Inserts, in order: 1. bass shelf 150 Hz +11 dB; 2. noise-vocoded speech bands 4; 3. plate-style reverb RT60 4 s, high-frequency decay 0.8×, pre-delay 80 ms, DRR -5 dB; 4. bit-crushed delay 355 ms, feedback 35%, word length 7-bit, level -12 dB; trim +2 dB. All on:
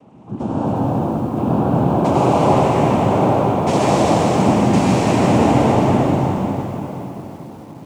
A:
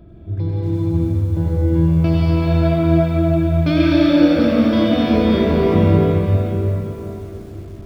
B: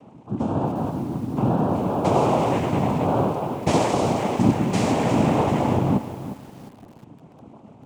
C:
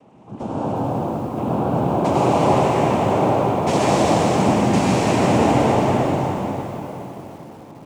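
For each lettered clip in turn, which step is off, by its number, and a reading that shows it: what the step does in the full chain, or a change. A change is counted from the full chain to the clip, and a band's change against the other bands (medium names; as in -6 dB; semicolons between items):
2, 1 kHz band -12.5 dB; 3, momentary loudness spread change -6 LU; 1, 125 Hz band -3.0 dB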